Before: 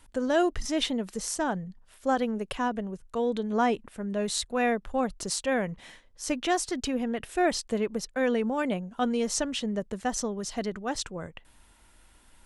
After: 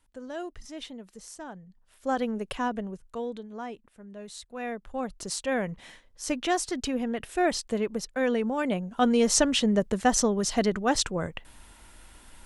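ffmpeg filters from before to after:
-af "volume=19.5dB,afade=t=in:st=1.65:d=0.6:silence=0.251189,afade=t=out:st=2.84:d=0.66:silence=0.237137,afade=t=in:st=4.43:d=1.27:silence=0.223872,afade=t=in:st=8.61:d=0.8:silence=0.446684"

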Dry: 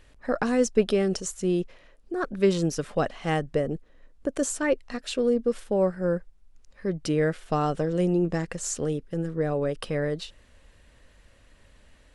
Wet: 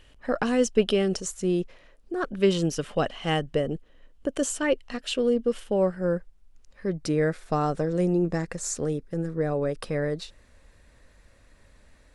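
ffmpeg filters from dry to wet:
-af "asetnsamples=n=441:p=0,asendcmd='1.12 equalizer g 0;2.14 equalizer g 10;5.97 equalizer g 1.5;6.97 equalizer g -10',equalizer=f=3k:t=o:w=0.22:g=11"

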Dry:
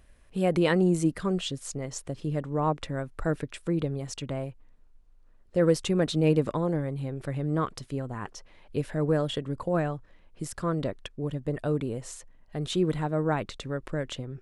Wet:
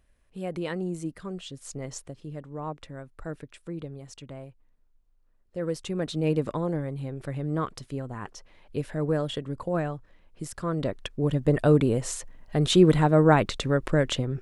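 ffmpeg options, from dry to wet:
-af "volume=16.5dB,afade=t=in:st=1.47:d=0.43:silence=0.398107,afade=t=out:st=1.9:d=0.26:silence=0.398107,afade=t=in:st=5.63:d=0.92:silence=0.421697,afade=t=in:st=10.69:d=0.83:silence=0.334965"

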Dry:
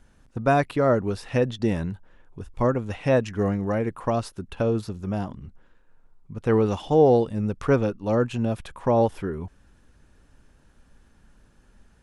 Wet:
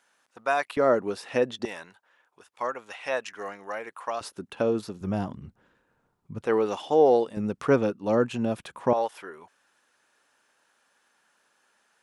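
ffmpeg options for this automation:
-af "asetnsamples=n=441:p=0,asendcmd='0.77 highpass f 310;1.65 highpass f 880;4.21 highpass f 230;5.01 highpass f 100;6.46 highpass f 380;7.37 highpass f 180;8.93 highpass f 760',highpass=810"

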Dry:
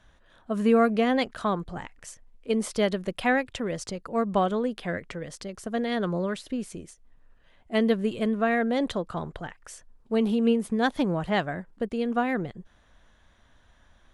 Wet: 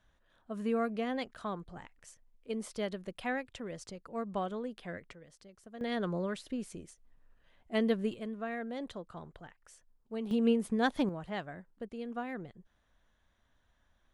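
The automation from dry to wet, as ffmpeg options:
-af "asetnsamples=n=441:p=0,asendcmd='5.13 volume volume -19dB;5.81 volume volume -6.5dB;8.14 volume volume -14dB;10.31 volume volume -5dB;11.09 volume volume -13dB',volume=-11.5dB"

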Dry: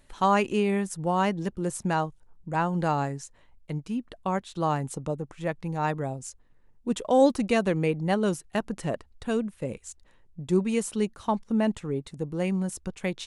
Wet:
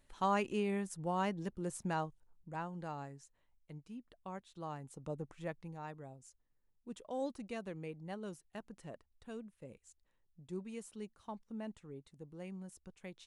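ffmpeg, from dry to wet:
-af "volume=-1.5dB,afade=t=out:st=2.06:d=0.7:silence=0.421697,afade=t=in:st=4.94:d=0.27:silence=0.354813,afade=t=out:st=5.21:d=0.63:silence=0.298538"

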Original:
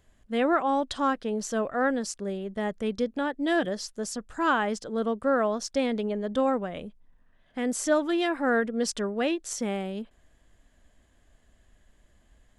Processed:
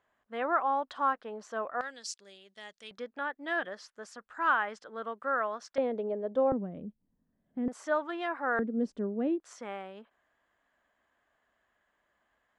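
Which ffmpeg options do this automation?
-af "asetnsamples=n=441:p=0,asendcmd='1.81 bandpass f 4400;2.91 bandpass f 1400;5.78 bandpass f 560;6.52 bandpass f 210;7.68 bandpass f 1100;8.59 bandpass f 270;9.4 bandpass f 1200',bandpass=f=1.1k:t=q:w=1.4:csg=0"

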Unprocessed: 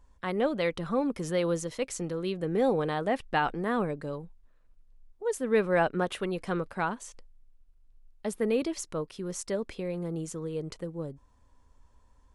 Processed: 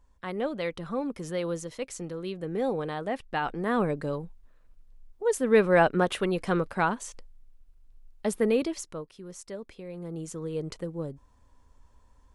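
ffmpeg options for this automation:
-af "volume=14dB,afade=t=in:st=3.4:d=0.55:silence=0.421697,afade=t=out:st=8.35:d=0.73:silence=0.251189,afade=t=in:st=9.86:d=0.74:silence=0.334965"

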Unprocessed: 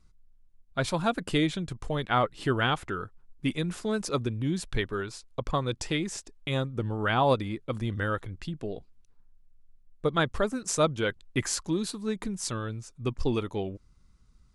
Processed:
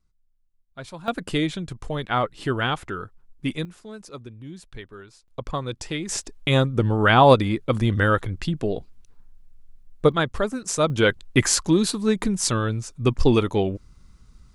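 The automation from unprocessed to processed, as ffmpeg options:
-af "asetnsamples=n=441:p=0,asendcmd='1.08 volume volume 2dB;3.65 volume volume -10dB;5.28 volume volume 0dB;6.09 volume volume 10dB;10.12 volume volume 3dB;10.9 volume volume 10dB',volume=-9.5dB"

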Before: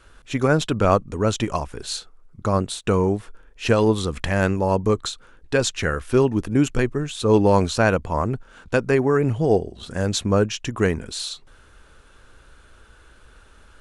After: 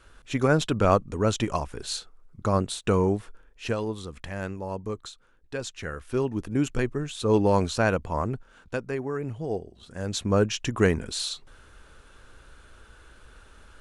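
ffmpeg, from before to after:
-af "volume=16dB,afade=t=out:st=3.17:d=0.69:silence=0.316228,afade=t=in:st=5.72:d=1.18:silence=0.398107,afade=t=out:st=8.26:d=0.61:silence=0.446684,afade=t=in:st=9.93:d=0.65:silence=0.281838"

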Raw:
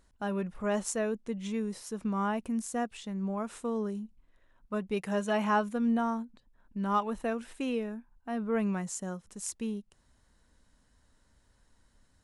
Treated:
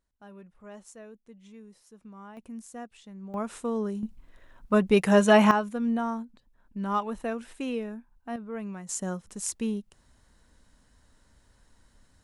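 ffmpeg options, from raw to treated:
-af "asetnsamples=n=441:p=0,asendcmd='2.37 volume volume -8.5dB;3.34 volume volume 3dB;4.03 volume volume 11.5dB;5.51 volume volume 0.5dB;8.36 volume volume -6.5dB;8.89 volume volume 5dB',volume=-15.5dB"

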